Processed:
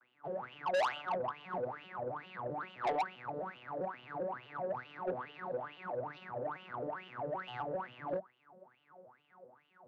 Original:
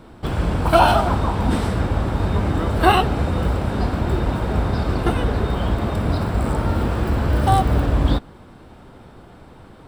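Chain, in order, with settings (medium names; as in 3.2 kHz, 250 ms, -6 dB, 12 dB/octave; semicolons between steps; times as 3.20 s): vocoder on a broken chord minor triad, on B2, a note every 131 ms; wah-wah 2.3 Hz 510–3000 Hz, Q 15; saturation -36.5 dBFS, distortion -3 dB; trim +8 dB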